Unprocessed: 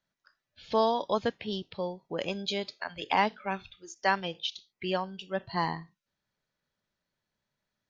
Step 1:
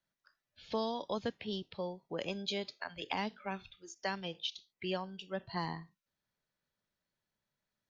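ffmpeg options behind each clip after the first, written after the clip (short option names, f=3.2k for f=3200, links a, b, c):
-filter_complex "[0:a]acrossover=split=350|3000[a][b][c];[b]acompressor=threshold=-31dB:ratio=6[d];[a][d][c]amix=inputs=3:normalize=0,volume=-4.5dB"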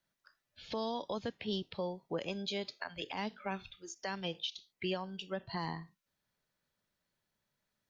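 -af "alimiter=level_in=6dB:limit=-24dB:level=0:latency=1:release=209,volume=-6dB,volume=3.5dB"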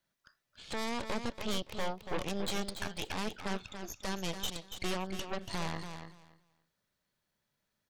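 -af "aeval=exprs='0.0501*(cos(1*acos(clip(val(0)/0.0501,-1,1)))-cos(1*PI/2))+0.00398*(cos(5*acos(clip(val(0)/0.0501,-1,1)))-cos(5*PI/2))+0.02*(cos(6*acos(clip(val(0)/0.0501,-1,1)))-cos(6*PI/2))':c=same,aecho=1:1:284|568|852:0.376|0.0677|0.0122,volume=-2dB"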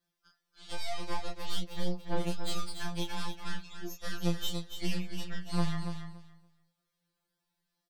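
-filter_complex "[0:a]asplit=2[a][b];[b]adelay=23,volume=-2.5dB[c];[a][c]amix=inputs=2:normalize=0,afftfilt=real='re*2.83*eq(mod(b,8),0)':imag='im*2.83*eq(mod(b,8),0)':win_size=2048:overlap=0.75"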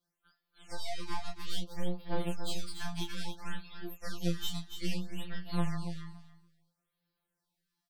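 -af "afftfilt=real='re*(1-between(b*sr/1024,440*pow(7700/440,0.5+0.5*sin(2*PI*0.6*pts/sr))/1.41,440*pow(7700/440,0.5+0.5*sin(2*PI*0.6*pts/sr))*1.41))':imag='im*(1-between(b*sr/1024,440*pow(7700/440,0.5+0.5*sin(2*PI*0.6*pts/sr))/1.41,440*pow(7700/440,0.5+0.5*sin(2*PI*0.6*pts/sr))*1.41))':win_size=1024:overlap=0.75,volume=-1.5dB"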